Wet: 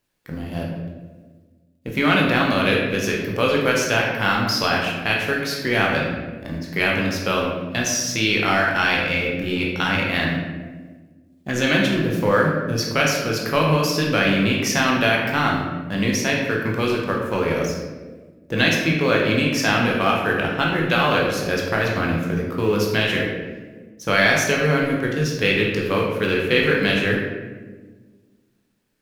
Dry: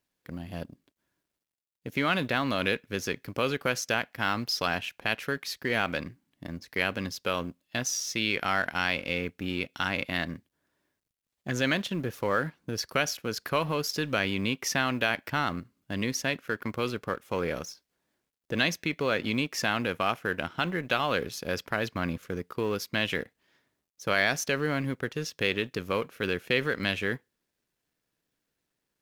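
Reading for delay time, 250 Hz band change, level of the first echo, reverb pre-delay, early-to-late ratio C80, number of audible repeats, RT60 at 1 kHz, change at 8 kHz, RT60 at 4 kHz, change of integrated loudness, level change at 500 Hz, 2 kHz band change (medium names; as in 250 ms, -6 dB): no echo, +11.0 dB, no echo, 12 ms, 4.0 dB, no echo, 1.2 s, +7.5 dB, 0.80 s, +9.5 dB, +10.0 dB, +9.5 dB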